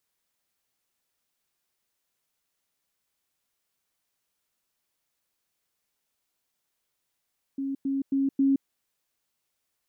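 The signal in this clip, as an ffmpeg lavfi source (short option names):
-f lavfi -i "aevalsrc='pow(10,(-27.5+3*floor(t/0.27))/20)*sin(2*PI*273*t)*clip(min(mod(t,0.27),0.17-mod(t,0.27))/0.005,0,1)':d=1.08:s=44100"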